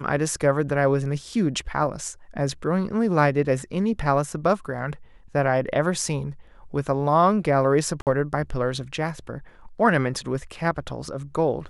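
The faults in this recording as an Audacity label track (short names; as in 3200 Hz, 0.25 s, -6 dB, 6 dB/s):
8.020000	8.070000	gap 48 ms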